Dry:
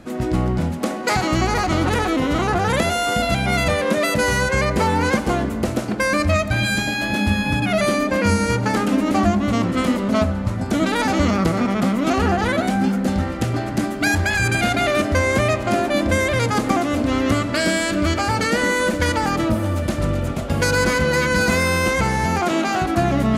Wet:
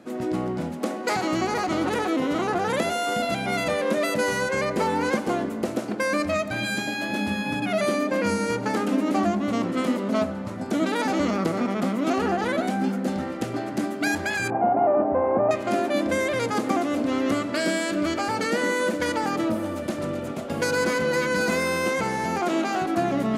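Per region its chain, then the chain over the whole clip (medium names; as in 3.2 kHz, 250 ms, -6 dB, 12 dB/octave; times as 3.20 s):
14.50–15.51 s: CVSD coder 16 kbps + resonant low-pass 820 Hz, resonance Q 3.6
whole clip: high-pass 310 Hz 12 dB/octave; bass shelf 440 Hz +10 dB; trim -7 dB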